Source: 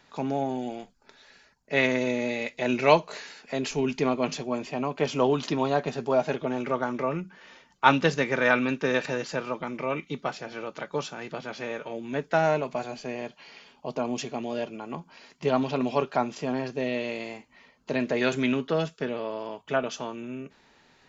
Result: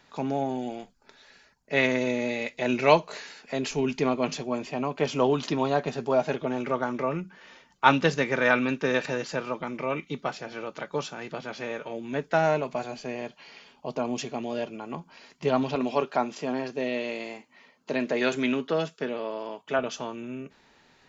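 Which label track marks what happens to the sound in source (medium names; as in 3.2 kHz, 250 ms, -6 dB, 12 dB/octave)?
15.750000	19.790000	high-pass 180 Hz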